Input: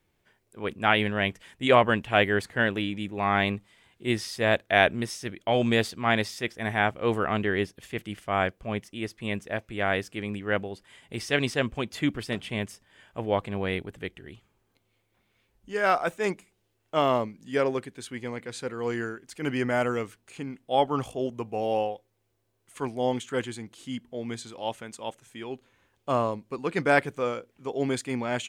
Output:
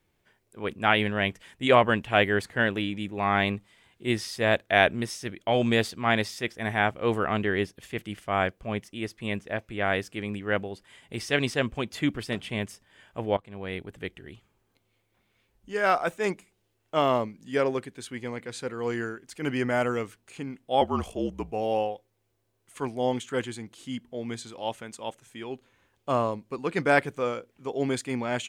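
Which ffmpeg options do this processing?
-filter_complex "[0:a]asettb=1/sr,asplit=3[a][b][c];[a]atrim=end=9.414[d];[b]atrim=start=9.41:end=9.84,asetpts=PTS-STARTPTS,afade=t=in:d=0.004:c=qsin,afade=t=out:st=0.426:d=0.004:c=qsin,acrossover=split=4400[e][f];[f]acompressor=threshold=-57dB:ratio=4:attack=1:release=60[g];[e][g]amix=inputs=2:normalize=0[h];[c]atrim=start=9.836[i];[d][h]acrossfade=d=0.004:c1=hsin:c2=qsin[j];[j][i]acrossfade=d=0.004:c1=qsin:c2=hsin,asettb=1/sr,asplit=3[k][l][m];[k]atrim=end=20.814[n];[l]atrim=start=20.81:end=21.52,asetpts=PTS-STARTPTS,afade=t=in:d=0.004:c=qsin,afade=t=out:st=0.706:d=0.004:c=qsin,afreqshift=-47[o];[m]atrim=start=21.516[p];[n][o]acrossfade=d=0.004:c1=hsin:c2=qsin[q];[q][p]acrossfade=d=0.004:c1=qsin:c2=hsin,asplit=2[r][s];[r]atrim=end=13.37,asetpts=PTS-STARTPTS,afade=t=out:st=13.366:d=0.004:c=hsin:silence=0.105925[t];[s]atrim=start=13.37,asetpts=PTS-STARTPTS,afade=t=in:d=0.69:silence=0.105925[u];[t][u]concat=n=2:v=0:a=1"

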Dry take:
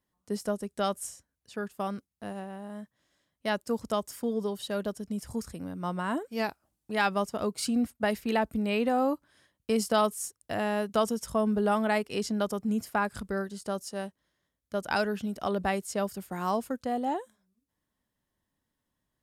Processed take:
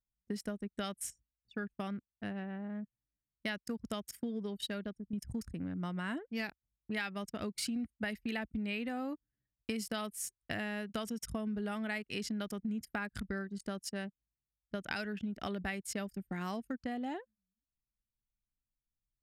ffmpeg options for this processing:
-filter_complex "[0:a]asplit=2[a][b];[a]atrim=end=5.13,asetpts=PTS-STARTPTS,afade=t=out:st=4.6:d=0.53:silence=0.334965[c];[b]atrim=start=5.13,asetpts=PTS-STARTPTS,afade=t=in:d=0.004:c=hsin:silence=0.334965[d];[c][d]concat=n=2:v=0:a=1,anlmdn=0.158,equalizer=f=500:t=o:w=1:g=-7,equalizer=f=1k:t=o:w=1:g=-10,equalizer=f=2k:t=o:w=1:g=7,equalizer=f=8k:t=o:w=1:g=-3,acompressor=threshold=-38dB:ratio=6,volume=3dB"

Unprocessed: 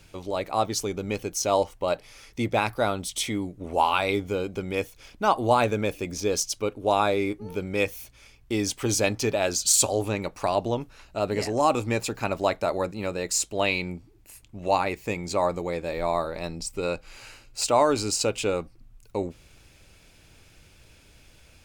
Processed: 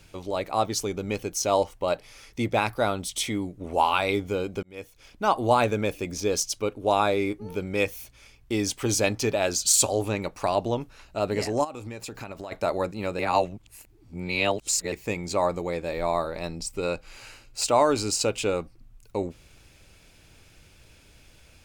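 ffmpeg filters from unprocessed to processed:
-filter_complex "[0:a]asplit=3[a][b][c];[a]afade=t=out:st=11.63:d=0.02[d];[b]acompressor=threshold=-33dB:ratio=10:attack=3.2:release=140:knee=1:detection=peak,afade=t=in:st=11.63:d=0.02,afade=t=out:st=12.51:d=0.02[e];[c]afade=t=in:st=12.51:d=0.02[f];[d][e][f]amix=inputs=3:normalize=0,asplit=4[g][h][i][j];[g]atrim=end=4.63,asetpts=PTS-STARTPTS,afade=t=out:st=4.626:d=0.004:c=hsin[k];[h]atrim=start=4.63:end=13.192,asetpts=PTS-STARTPTS,afade=t=in:d=0.93:c=qsin[l];[i]atrim=start=13.188:end=14.922,asetpts=PTS-STARTPTS,areverse[m];[j]atrim=start=14.918[n];[k][l]concat=n=2:v=0:a=1[o];[o][m]acrossfade=d=0.004:c1=hsin:c2=hsin[p];[p][n]acrossfade=d=0.004:c1=hsin:c2=hsin"

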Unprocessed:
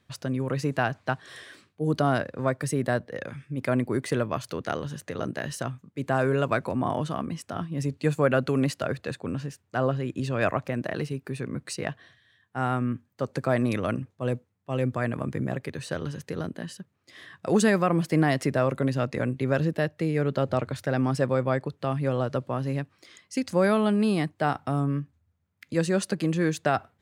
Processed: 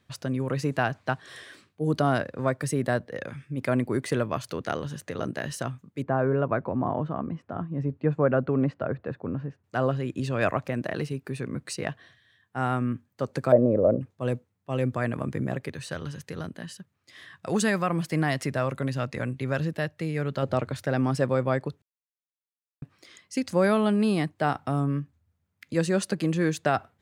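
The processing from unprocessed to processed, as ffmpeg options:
-filter_complex "[0:a]asettb=1/sr,asplit=3[a][b][c];[a]atrim=end=6.024[d];[b]atrim=start=6.02:end=9.64,asetpts=PTS-STARTPTS,afade=t=in:d=0.004:c=qsin,afade=t=out:st=3.616:d=0.004:c=qsin,lowpass=1.3k[e];[c]atrim=start=9.636[f];[d][e]acrossfade=d=0.004:c1=hsin:c2=qsin[g];[g][f]acrossfade=d=0.004:c1=qsin:c2=hsin,asettb=1/sr,asplit=3[h][i][j];[h]atrim=end=13.524[k];[i]atrim=start=13.52:end=14.01,asetpts=PTS-STARTPTS,afade=t=in:d=0.004:c=qsin,afade=t=out:st=0.486:d=0.004:c=qsin,lowpass=f=550:t=q:w=5.2[l];[j]atrim=start=14.006[m];[k][l]acrossfade=d=0.004:c1=hsin:c2=qsin[n];[n][m]acrossfade=d=0.004:c1=qsin:c2=hsin,asettb=1/sr,asplit=3[o][p][q];[o]atrim=end=15.754[r];[p]atrim=start=15.75:end=20.43,asetpts=PTS-STARTPTS,afade=t=in:d=0.004:c=qsin,afade=t=out:st=4.676:d=0.004:c=qsin,equalizer=f=370:t=o:w=2.1:g=-5.5[s];[q]atrim=start=20.426[t];[r][s]acrossfade=d=0.004:c1=hsin:c2=qsin[u];[u][t]acrossfade=d=0.004:c1=qsin:c2=hsin,asplit=3[v][w][x];[v]atrim=end=21.82,asetpts=PTS-STARTPTS,afade=t=out:st=21.816:d=0.004:c=hsin[y];[w]atrim=start=21.82:end=22.82,asetpts=PTS-STARTPTS,volume=0[z];[x]atrim=start=22.82,asetpts=PTS-STARTPTS,afade=t=in:d=0.004:c=hsin[aa];[y][z][aa]concat=n=3:v=0:a=1"

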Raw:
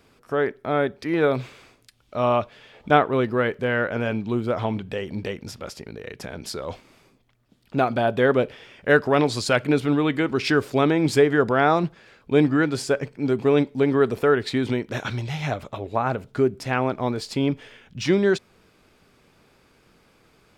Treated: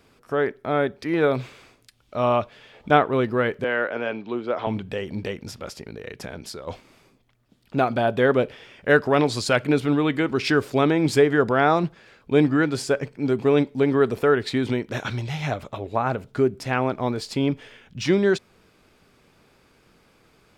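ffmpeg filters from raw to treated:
-filter_complex "[0:a]asettb=1/sr,asplit=3[a][b][c];[a]atrim=end=3.644[d];[b]atrim=start=3.64:end=4.67,asetpts=PTS-STARTPTS,afade=t=in:d=0.004:c=qsin,afade=t=out:st=1.026:d=0.004:c=qsin,acrossover=split=260 5200:gain=0.112 1 0.0794[e][f][g];[e][f][g]amix=inputs=3:normalize=0[h];[c]atrim=start=4.666[i];[d][h]acrossfade=d=0.004:c1=hsin:c2=qsin[j];[j][i]acrossfade=d=0.004:c1=qsin:c2=hsin,asplit=2[k][l];[k]atrim=end=6.67,asetpts=PTS-STARTPTS,afade=t=out:st=6.27:d=0.4:silence=0.421697[m];[l]atrim=start=6.67,asetpts=PTS-STARTPTS,afade=t=in:d=0.004:c=hsin:silence=0.421697[n];[m][n]concat=n=2:v=0:a=1"

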